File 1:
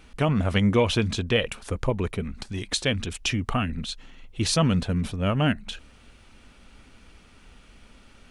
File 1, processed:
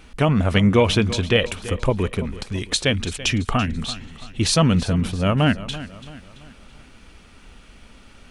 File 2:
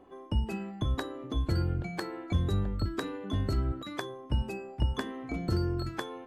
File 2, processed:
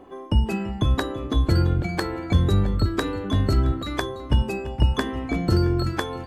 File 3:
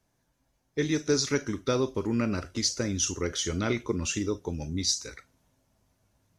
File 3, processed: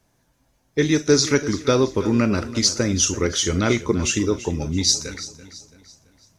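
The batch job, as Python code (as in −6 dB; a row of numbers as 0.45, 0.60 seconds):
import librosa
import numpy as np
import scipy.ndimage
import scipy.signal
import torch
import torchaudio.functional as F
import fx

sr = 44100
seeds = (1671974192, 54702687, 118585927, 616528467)

y = fx.echo_feedback(x, sr, ms=335, feedback_pct=43, wet_db=-15.5)
y = y * 10.0 ** (-22 / 20.0) / np.sqrt(np.mean(np.square(y)))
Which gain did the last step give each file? +4.5, +9.5, +8.5 decibels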